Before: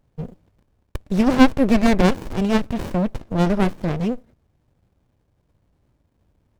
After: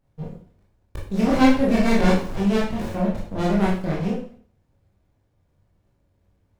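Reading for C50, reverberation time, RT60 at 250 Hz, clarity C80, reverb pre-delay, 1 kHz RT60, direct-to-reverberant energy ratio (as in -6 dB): 4.0 dB, 0.50 s, 0.50 s, 8.5 dB, 17 ms, 0.50 s, -5.5 dB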